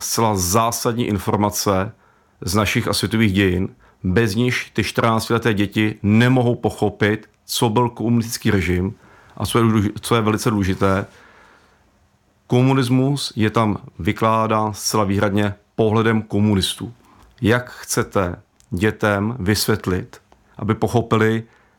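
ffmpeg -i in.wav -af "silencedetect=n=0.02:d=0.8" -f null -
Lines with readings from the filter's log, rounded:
silence_start: 11.09
silence_end: 12.50 | silence_duration: 1.41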